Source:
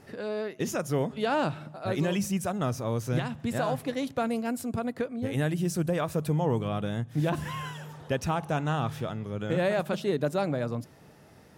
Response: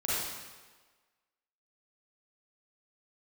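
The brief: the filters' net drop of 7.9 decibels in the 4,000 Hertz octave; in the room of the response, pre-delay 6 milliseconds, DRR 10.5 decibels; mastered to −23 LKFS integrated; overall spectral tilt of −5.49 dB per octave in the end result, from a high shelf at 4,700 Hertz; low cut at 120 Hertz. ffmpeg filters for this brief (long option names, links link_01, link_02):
-filter_complex "[0:a]highpass=120,equalizer=frequency=4000:width_type=o:gain=-7,highshelf=frequency=4700:gain=-8,asplit=2[link_01][link_02];[1:a]atrim=start_sample=2205,adelay=6[link_03];[link_02][link_03]afir=irnorm=-1:irlink=0,volume=-18.5dB[link_04];[link_01][link_04]amix=inputs=2:normalize=0,volume=7.5dB"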